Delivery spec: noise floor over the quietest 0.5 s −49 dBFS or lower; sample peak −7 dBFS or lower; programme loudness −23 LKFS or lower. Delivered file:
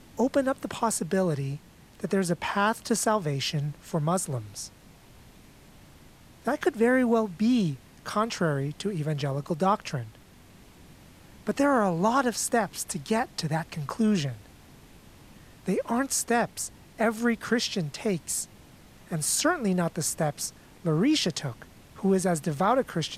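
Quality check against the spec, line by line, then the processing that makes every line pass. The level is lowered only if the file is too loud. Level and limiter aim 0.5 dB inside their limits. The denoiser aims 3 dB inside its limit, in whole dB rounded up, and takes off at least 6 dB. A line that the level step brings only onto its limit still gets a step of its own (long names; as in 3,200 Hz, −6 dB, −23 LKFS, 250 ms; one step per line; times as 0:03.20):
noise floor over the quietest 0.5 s −52 dBFS: in spec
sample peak −10.5 dBFS: in spec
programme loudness −27.5 LKFS: in spec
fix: no processing needed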